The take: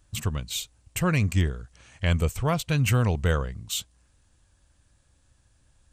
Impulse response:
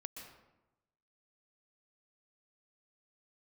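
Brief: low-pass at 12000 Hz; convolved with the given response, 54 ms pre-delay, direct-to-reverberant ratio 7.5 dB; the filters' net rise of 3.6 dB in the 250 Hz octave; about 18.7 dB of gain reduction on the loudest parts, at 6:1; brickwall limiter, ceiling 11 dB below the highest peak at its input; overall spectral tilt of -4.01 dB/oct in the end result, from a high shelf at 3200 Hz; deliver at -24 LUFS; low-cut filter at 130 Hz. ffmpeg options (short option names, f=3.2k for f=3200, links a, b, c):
-filter_complex "[0:a]highpass=130,lowpass=12k,equalizer=f=250:t=o:g=7,highshelf=f=3.2k:g=6,acompressor=threshold=-39dB:ratio=6,alimiter=level_in=7.5dB:limit=-24dB:level=0:latency=1,volume=-7.5dB,asplit=2[a][b];[1:a]atrim=start_sample=2205,adelay=54[c];[b][c]afir=irnorm=-1:irlink=0,volume=-4dB[d];[a][d]amix=inputs=2:normalize=0,volume=19.5dB"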